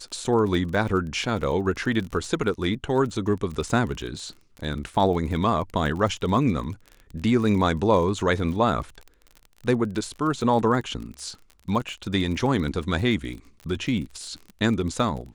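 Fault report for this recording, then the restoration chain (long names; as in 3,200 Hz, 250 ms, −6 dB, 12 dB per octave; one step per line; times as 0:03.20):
surface crackle 33 per second −32 dBFS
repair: click removal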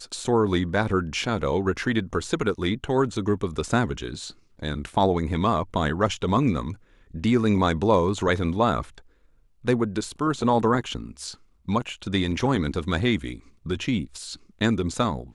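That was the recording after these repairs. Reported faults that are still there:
none of them is left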